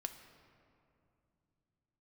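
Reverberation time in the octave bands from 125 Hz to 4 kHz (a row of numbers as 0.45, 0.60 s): 4.4, 3.7, 2.8, 2.5, 2.0, 1.4 s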